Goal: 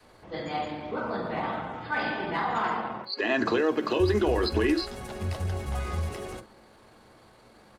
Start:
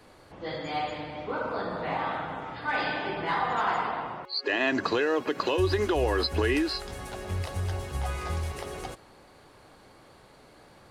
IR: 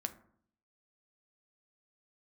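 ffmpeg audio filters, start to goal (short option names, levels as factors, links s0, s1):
-filter_complex "[0:a]adynamicequalizer=threshold=0.00794:dfrequency=220:dqfactor=0.94:tfrequency=220:tqfactor=0.94:attack=5:release=100:ratio=0.375:range=2.5:mode=boostabove:tftype=bell,atempo=1.4[s0];[1:a]atrim=start_sample=2205,atrim=end_sample=3087[s1];[s0][s1]afir=irnorm=-1:irlink=0"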